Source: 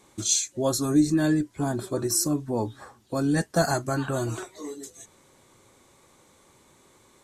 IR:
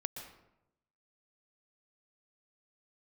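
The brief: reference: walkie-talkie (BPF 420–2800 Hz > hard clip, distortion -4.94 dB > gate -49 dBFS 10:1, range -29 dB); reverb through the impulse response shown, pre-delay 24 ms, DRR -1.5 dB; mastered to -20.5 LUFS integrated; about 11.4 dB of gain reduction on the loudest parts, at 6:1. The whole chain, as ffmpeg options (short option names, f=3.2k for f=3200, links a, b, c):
-filter_complex "[0:a]acompressor=threshold=-28dB:ratio=6,asplit=2[a][b];[1:a]atrim=start_sample=2205,adelay=24[c];[b][c]afir=irnorm=-1:irlink=0,volume=2dB[d];[a][d]amix=inputs=2:normalize=0,highpass=420,lowpass=2.8k,asoftclip=type=hard:threshold=-37.5dB,agate=range=-29dB:threshold=-49dB:ratio=10,volume=20dB"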